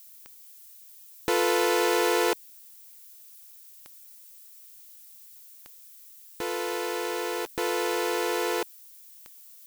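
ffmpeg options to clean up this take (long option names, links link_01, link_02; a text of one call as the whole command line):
ffmpeg -i in.wav -af "adeclick=threshold=4,afftdn=noise_reduction=23:noise_floor=-50" out.wav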